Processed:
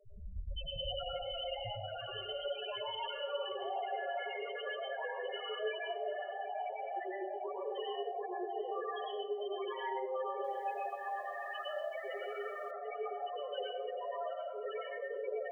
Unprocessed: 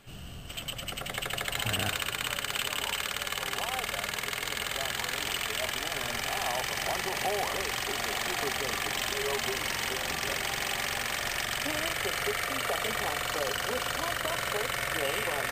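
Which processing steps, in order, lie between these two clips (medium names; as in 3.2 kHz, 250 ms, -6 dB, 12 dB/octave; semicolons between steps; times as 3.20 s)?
graphic EQ 125/500/1000 Hz -5/+6/+4 dB; compressor with a negative ratio -34 dBFS, ratio -1; loudest bins only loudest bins 1; echo whose repeats swap between lows and highs 371 ms, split 920 Hz, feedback 53%, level -9 dB; plate-style reverb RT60 0.54 s, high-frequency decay 0.75×, pre-delay 90 ms, DRR -2.5 dB; 10.31–12.71 s: bit-crushed delay 132 ms, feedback 55%, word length 11-bit, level -11 dB; trim +3.5 dB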